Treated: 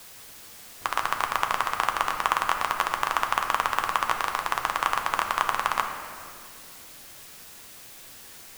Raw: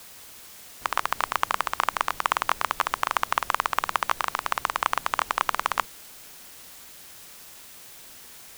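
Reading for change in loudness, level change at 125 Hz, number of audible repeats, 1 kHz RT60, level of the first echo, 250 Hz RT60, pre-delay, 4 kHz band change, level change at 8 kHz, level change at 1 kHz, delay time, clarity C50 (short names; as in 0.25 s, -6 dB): +0.5 dB, +2.0 dB, none, 2.1 s, none, 4.3 s, 6 ms, 0.0 dB, 0.0 dB, +0.5 dB, none, 6.0 dB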